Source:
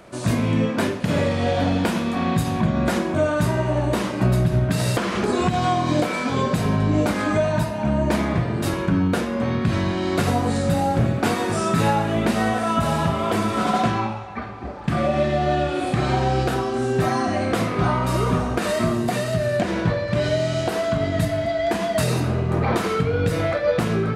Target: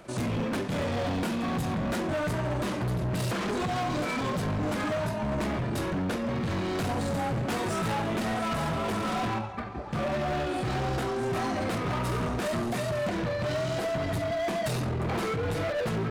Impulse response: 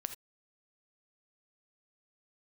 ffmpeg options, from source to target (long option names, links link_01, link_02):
-af "atempo=1.5,asoftclip=type=hard:threshold=-23.5dB,volume=-3.5dB"